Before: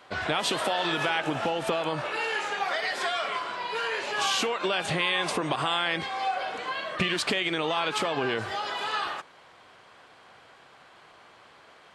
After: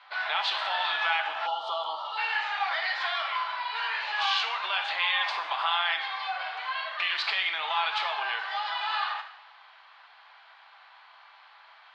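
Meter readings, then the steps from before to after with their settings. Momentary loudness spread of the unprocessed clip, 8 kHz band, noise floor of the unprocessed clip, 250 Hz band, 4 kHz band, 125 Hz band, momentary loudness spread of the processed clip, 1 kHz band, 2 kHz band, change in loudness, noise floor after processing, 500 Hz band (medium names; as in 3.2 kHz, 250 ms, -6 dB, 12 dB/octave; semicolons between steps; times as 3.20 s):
6 LU, under -15 dB, -54 dBFS, under -30 dB, +0.5 dB, under -40 dB, 7 LU, +0.5 dB, +1.0 dB, -0.5 dB, -55 dBFS, -11.5 dB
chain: elliptic band-pass 810–4400 Hz, stop band 80 dB; two-slope reverb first 0.65 s, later 2.2 s, DRR 4.5 dB; time-frequency box 1.47–2.18 s, 1.4–2.8 kHz -25 dB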